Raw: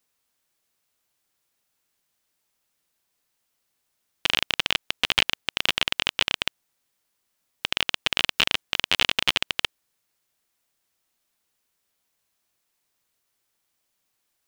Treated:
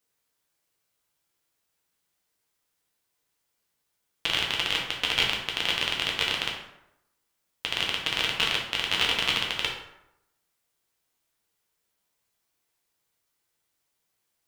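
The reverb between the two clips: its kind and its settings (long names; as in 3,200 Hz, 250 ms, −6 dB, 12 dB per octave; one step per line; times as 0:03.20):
dense smooth reverb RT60 0.85 s, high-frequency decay 0.6×, DRR −2 dB
level −5.5 dB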